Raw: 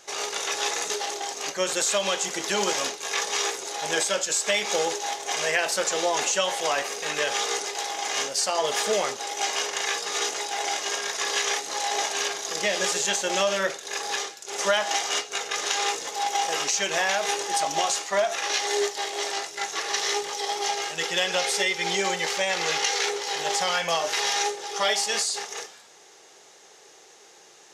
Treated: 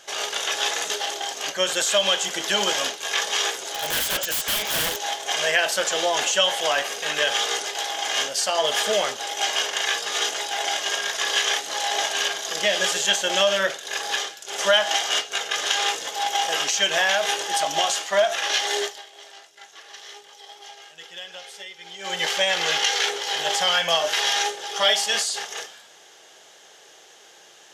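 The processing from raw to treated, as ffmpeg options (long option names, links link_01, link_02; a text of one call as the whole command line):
ffmpeg -i in.wav -filter_complex "[0:a]asettb=1/sr,asplit=3[link_01][link_02][link_03];[link_01]atrim=end=3.564[link_04];[link_02]atrim=start=3.56:end=5.02,asetpts=PTS-STARTPTS,afade=type=in:duration=0.004:curve=qsin,afade=type=out:start_time=1.456:duration=0.004:curve=qsin,aeval=exprs='(mod(11.2*val(0)+1,2)-1)/11.2':channel_layout=same[link_05];[link_03]atrim=start=5.016[link_06];[link_04][link_05]acrossfade=duration=0.004:curve1=hsin:curve2=qsin[link_07];[link_07][link_06]acrossfade=duration=0.004:curve1=qsin:curve2=hsin,asplit=3[link_08][link_09][link_10];[link_08]atrim=end=19.03,asetpts=PTS-STARTPTS,afade=type=out:start_time=18.79:duration=0.24:silence=0.125893[link_11];[link_09]atrim=start=19.03:end=21.99,asetpts=PTS-STARTPTS,volume=-18dB[link_12];[link_10]atrim=start=21.99,asetpts=PTS-STARTPTS,afade=type=in:duration=0.24:silence=0.125893[link_13];[link_11][link_12][link_13]concat=n=3:v=0:a=1,equalizer=frequency=400:width_type=o:width=0.33:gain=-3,equalizer=frequency=630:width_type=o:width=0.33:gain=5,equalizer=frequency=1600:width_type=o:width=0.33:gain=6,equalizer=frequency=3150:width_type=o:width=0.33:gain=10,equalizer=frequency=12500:width_type=o:width=0.33:gain=6" out.wav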